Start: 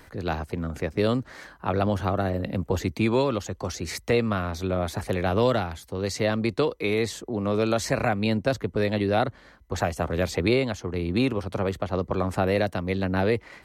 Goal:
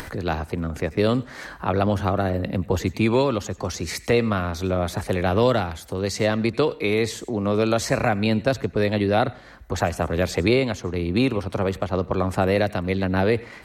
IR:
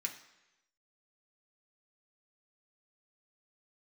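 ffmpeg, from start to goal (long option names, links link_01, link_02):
-filter_complex "[0:a]acompressor=mode=upward:threshold=-29dB:ratio=2.5,asplit=2[link_01][link_02];[1:a]atrim=start_sample=2205,adelay=92[link_03];[link_02][link_03]afir=irnorm=-1:irlink=0,volume=-18.5dB[link_04];[link_01][link_04]amix=inputs=2:normalize=0,volume=3dB"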